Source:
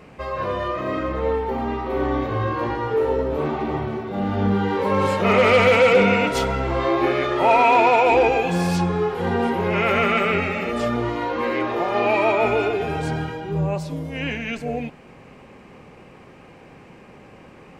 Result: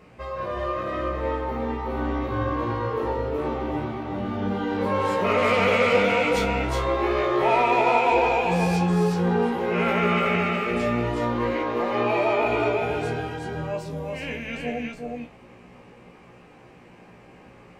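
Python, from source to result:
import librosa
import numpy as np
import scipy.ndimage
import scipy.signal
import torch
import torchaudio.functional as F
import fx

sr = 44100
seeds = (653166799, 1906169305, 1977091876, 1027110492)

p1 = fx.comb_fb(x, sr, f0_hz=60.0, decay_s=0.18, harmonics='all', damping=0.0, mix_pct=100)
y = p1 + fx.echo_single(p1, sr, ms=368, db=-3.0, dry=0)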